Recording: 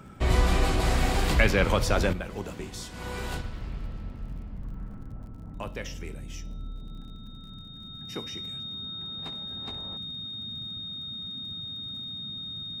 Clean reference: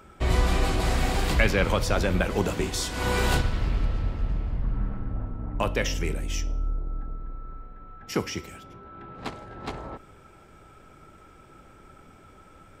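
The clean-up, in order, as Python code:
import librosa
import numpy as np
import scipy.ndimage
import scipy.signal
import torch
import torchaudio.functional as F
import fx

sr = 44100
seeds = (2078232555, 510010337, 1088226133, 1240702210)

y = fx.fix_declick_ar(x, sr, threshold=6.5)
y = fx.notch(y, sr, hz=3700.0, q=30.0)
y = fx.noise_reduce(y, sr, print_start_s=7.35, print_end_s=7.85, reduce_db=10.0)
y = fx.fix_level(y, sr, at_s=2.13, step_db=10.5)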